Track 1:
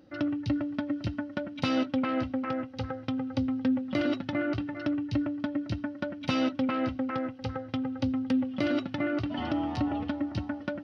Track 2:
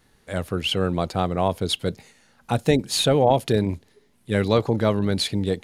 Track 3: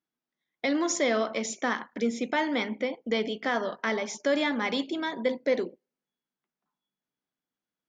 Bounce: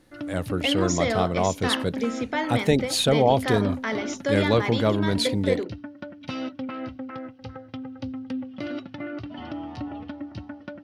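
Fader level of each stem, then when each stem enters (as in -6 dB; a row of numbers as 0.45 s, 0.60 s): -4.5 dB, -1.5 dB, 0.0 dB; 0.00 s, 0.00 s, 0.00 s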